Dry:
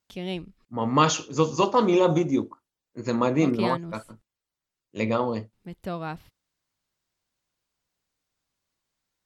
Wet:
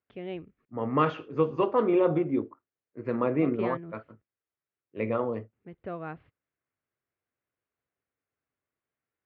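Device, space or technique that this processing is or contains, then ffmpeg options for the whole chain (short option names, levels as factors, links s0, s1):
bass cabinet: -af "highpass=85,equalizer=f=190:t=q:w=4:g=-7,equalizer=f=430:t=q:w=4:g=4,equalizer=f=910:t=q:w=4:g=-6,lowpass=f=2300:w=0.5412,lowpass=f=2300:w=1.3066,volume=0.668"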